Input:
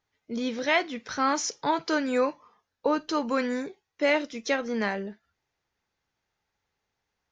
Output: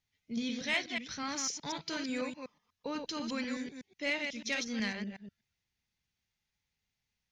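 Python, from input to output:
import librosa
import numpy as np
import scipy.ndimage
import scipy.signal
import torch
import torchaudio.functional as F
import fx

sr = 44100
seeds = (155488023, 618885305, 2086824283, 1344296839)

y = fx.reverse_delay(x, sr, ms=123, wet_db=-5.0)
y = fx.high_shelf(y, sr, hz=2600.0, db=7.5, at=(4.52, 4.93))
y = fx.rider(y, sr, range_db=3, speed_s=2.0)
y = fx.band_shelf(y, sr, hz=690.0, db=-12.0, octaves=2.7)
y = 10.0 ** (-17.5 / 20.0) * np.tanh(y / 10.0 ** (-17.5 / 20.0))
y = y * librosa.db_to_amplitude(-3.5)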